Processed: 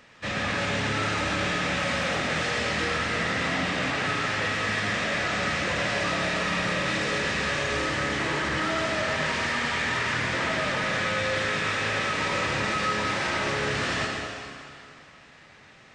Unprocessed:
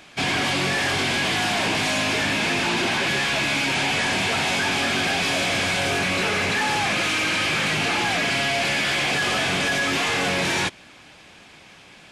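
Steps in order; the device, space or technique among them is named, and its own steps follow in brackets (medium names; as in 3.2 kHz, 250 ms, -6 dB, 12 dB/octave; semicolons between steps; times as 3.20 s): slowed and reverbed (tape speed -24%; reverberation RT60 2.4 s, pre-delay 69 ms, DRR 1 dB); trim -7 dB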